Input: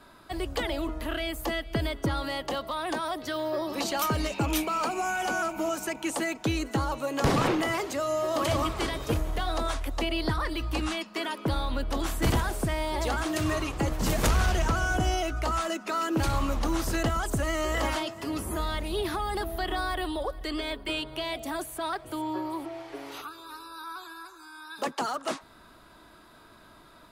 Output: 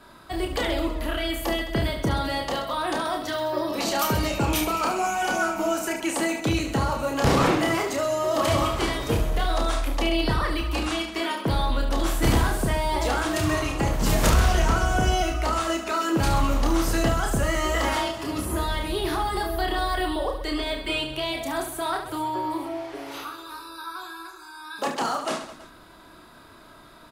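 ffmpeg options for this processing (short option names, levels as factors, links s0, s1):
-af "aecho=1:1:30|72|130.8|213.1|328.4:0.631|0.398|0.251|0.158|0.1,volume=1.33"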